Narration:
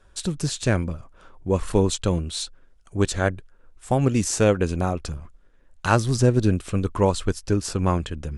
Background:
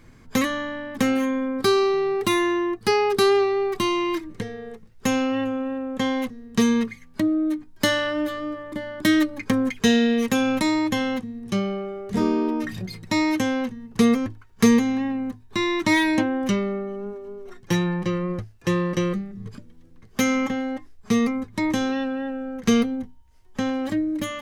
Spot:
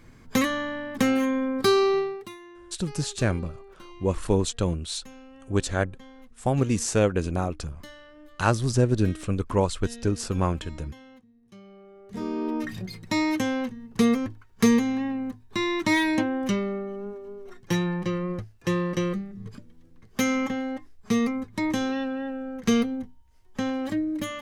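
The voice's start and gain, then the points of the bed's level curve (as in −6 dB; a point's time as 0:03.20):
2.55 s, −3.0 dB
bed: 0:01.98 −1 dB
0:02.38 −25 dB
0:11.57 −25 dB
0:12.56 −3 dB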